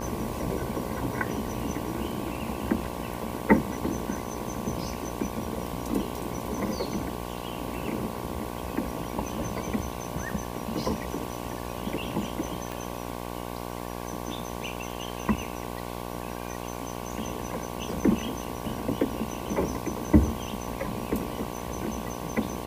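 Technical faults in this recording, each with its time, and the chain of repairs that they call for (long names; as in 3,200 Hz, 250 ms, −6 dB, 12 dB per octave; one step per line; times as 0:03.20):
mains buzz 60 Hz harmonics 19 −36 dBFS
0:12.72: click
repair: click removal
hum removal 60 Hz, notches 19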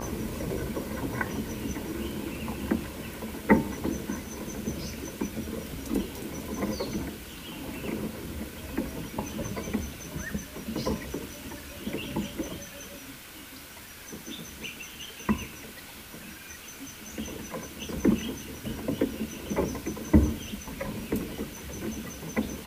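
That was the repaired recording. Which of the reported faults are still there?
0:12.72: click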